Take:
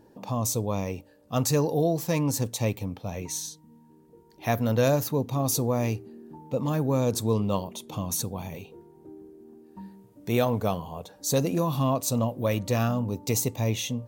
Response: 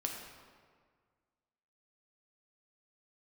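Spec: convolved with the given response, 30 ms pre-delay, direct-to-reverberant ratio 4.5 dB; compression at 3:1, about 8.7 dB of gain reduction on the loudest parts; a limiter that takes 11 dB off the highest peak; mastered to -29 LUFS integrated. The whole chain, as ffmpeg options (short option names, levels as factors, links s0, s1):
-filter_complex "[0:a]acompressor=threshold=0.0282:ratio=3,alimiter=level_in=1.78:limit=0.0631:level=0:latency=1,volume=0.562,asplit=2[s0][s1];[1:a]atrim=start_sample=2205,adelay=30[s2];[s1][s2]afir=irnorm=-1:irlink=0,volume=0.501[s3];[s0][s3]amix=inputs=2:normalize=0,volume=2.66"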